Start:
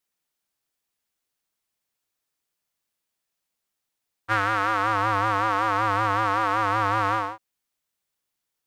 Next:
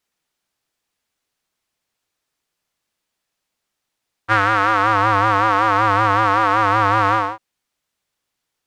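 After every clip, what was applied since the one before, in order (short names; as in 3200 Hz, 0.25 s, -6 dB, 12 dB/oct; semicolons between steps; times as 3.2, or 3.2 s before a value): high shelf 10000 Hz -11.5 dB; gain +7.5 dB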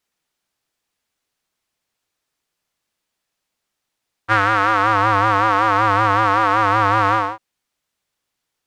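nothing audible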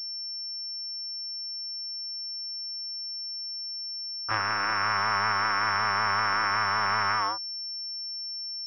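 self-modulated delay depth 0.58 ms; low-pass sweep 320 Hz -> 1300 Hz, 3.25–4.1; pulse-width modulation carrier 5400 Hz; gain -8 dB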